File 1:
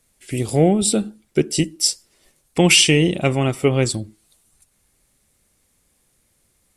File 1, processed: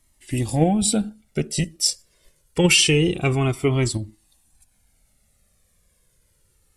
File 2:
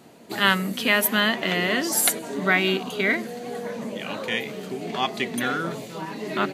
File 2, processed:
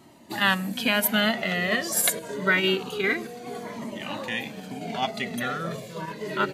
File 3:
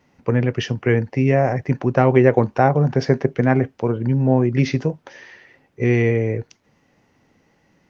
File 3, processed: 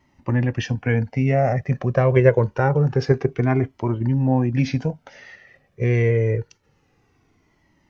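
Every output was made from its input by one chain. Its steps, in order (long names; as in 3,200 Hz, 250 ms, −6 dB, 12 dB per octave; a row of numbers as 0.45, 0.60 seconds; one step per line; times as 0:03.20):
low-shelf EQ 130 Hz +5 dB
in parallel at −1 dB: output level in coarse steps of 11 dB
on the sum: flanger whose copies keep moving one way falling 0.26 Hz
level −1.5 dB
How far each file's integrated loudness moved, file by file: −2.5, −2.0, −2.0 LU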